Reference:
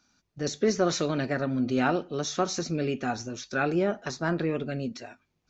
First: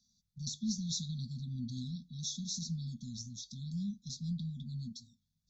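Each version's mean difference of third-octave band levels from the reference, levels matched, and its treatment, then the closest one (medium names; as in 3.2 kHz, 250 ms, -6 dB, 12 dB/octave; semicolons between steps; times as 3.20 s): 17.0 dB: brick-wall FIR band-stop 240–3300 Hz; trim -4.5 dB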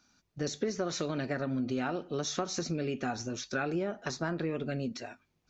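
2.0 dB: compression, threshold -29 dBFS, peak gain reduction 10 dB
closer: second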